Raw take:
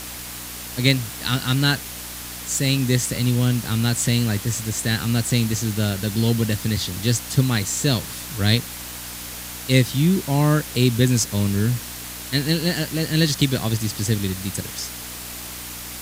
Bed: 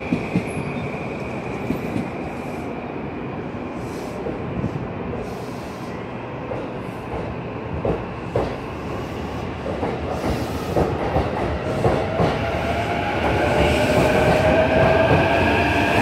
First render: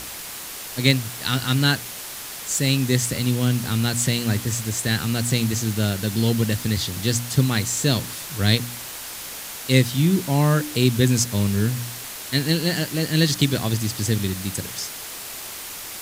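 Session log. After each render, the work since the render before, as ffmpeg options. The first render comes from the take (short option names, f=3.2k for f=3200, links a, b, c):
-af "bandreject=f=60:t=h:w=4,bandreject=f=120:t=h:w=4,bandreject=f=180:t=h:w=4,bandreject=f=240:t=h:w=4,bandreject=f=300:t=h:w=4"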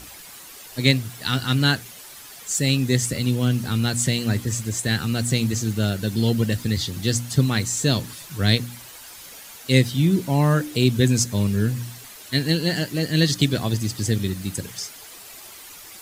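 -af "afftdn=nr=10:nf=-35"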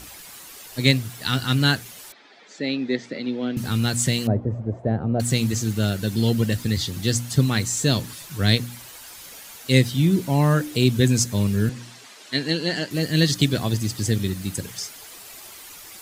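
-filter_complex "[0:a]asettb=1/sr,asplit=3[a][b][c];[a]atrim=end=2.124[d];[b]atrim=start=2.12:end=3.57,asetpts=PTS-STARTPTS,afade=t=in:d=0.004:c=qsin,afade=t=out:st=1.446:d=0.004:c=qsin,highpass=f=230:w=0.5412,highpass=f=230:w=1.3066,equalizer=f=1.1k:t=q:w=4:g=-7,equalizer=f=1.5k:t=q:w=4:g=-3,equalizer=f=2.9k:t=q:w=4:g=-9,lowpass=f=3.6k:w=0.5412,lowpass=f=3.6k:w=1.3066[e];[c]atrim=start=3.566[f];[d][e]acrossfade=d=0.004:c1=hsin:c2=qsin[g];[g][f]acrossfade=d=0.004:c1=qsin:c2=hsin,asettb=1/sr,asplit=3[h][i][j];[h]atrim=end=4.274[k];[i]atrim=start=4.27:end=5.2,asetpts=PTS-STARTPTS,afade=t=in:d=0.004:c=qsin,afade=t=out:st=0.926:d=0.004:c=qsin,lowpass=f=640:t=q:w=3.4[l];[j]atrim=start=5.196[m];[k][l]acrossfade=d=0.004:c1=hsin:c2=qsin[n];[n][m]acrossfade=d=0.004:c1=qsin:c2=hsin,asettb=1/sr,asplit=3[o][p][q];[o]atrim=end=11.694[r];[p]atrim=start=11.69:end=12.91,asetpts=PTS-STARTPTS,afade=t=in:d=0.004:c=qsin,afade=t=out:st=1.216:d=0.004:c=qsin,highpass=220,lowpass=6.6k[s];[q]atrim=start=12.906[t];[r][s]acrossfade=d=0.004:c1=hsin:c2=qsin[u];[u][t]acrossfade=d=0.004:c1=qsin:c2=hsin"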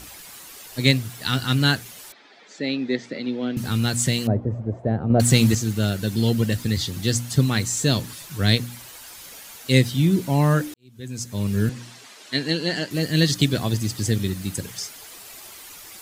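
-filter_complex "[0:a]asettb=1/sr,asplit=3[a][b][c];[a]atrim=end=5.104[d];[b]atrim=start=5.1:end=5.55,asetpts=PTS-STARTPTS,afade=t=in:d=0.004:c=qsin,afade=t=out:st=0.446:d=0.004:c=qsin,acontrast=48[e];[c]atrim=start=5.546[f];[d][e]acrossfade=d=0.004:c1=hsin:c2=qsin[g];[g][f]acrossfade=d=0.004:c1=qsin:c2=hsin,asplit=2[h][i];[h]atrim=end=10.74,asetpts=PTS-STARTPTS,afade=t=out:st=10.736:d=0.004:c=hsin[j];[i]atrim=start=10.74,asetpts=PTS-STARTPTS,afade=t=in:d=0.84:c=qua[k];[j][k]concat=n=2:v=0:a=1"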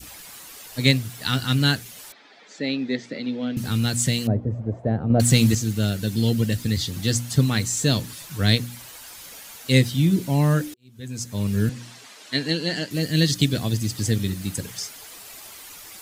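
-af "bandreject=f=370:w=12,adynamicequalizer=threshold=0.0126:dfrequency=1000:dqfactor=0.78:tfrequency=1000:tqfactor=0.78:attack=5:release=100:ratio=0.375:range=3:mode=cutabove:tftype=bell"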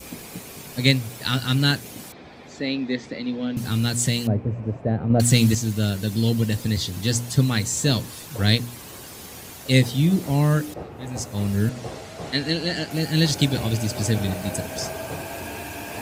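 -filter_complex "[1:a]volume=-16.5dB[a];[0:a][a]amix=inputs=2:normalize=0"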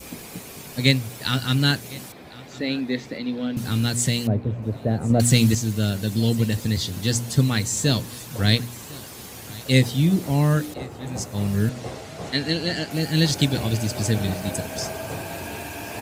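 -af "aecho=1:1:1056|2112|3168:0.0891|0.0392|0.0173"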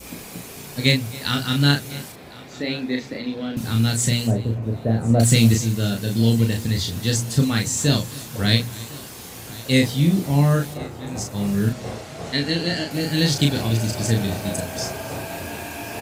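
-filter_complex "[0:a]asplit=2[a][b];[b]adelay=35,volume=-4dB[c];[a][c]amix=inputs=2:normalize=0,aecho=1:1:273:0.1"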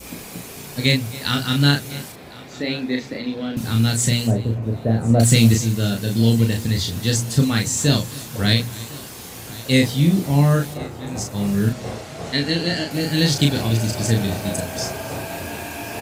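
-af "volume=1.5dB,alimiter=limit=-3dB:level=0:latency=1"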